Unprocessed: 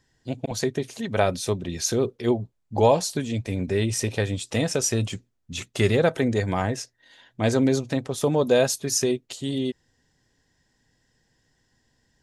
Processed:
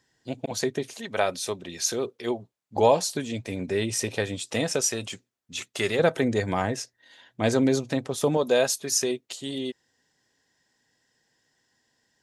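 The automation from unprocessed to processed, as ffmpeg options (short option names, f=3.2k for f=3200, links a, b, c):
-af "asetnsamples=n=441:p=0,asendcmd='0.94 highpass f 610;2.76 highpass f 260;4.81 highpass f 600;5.99 highpass f 150;8.37 highpass f 440',highpass=f=240:p=1"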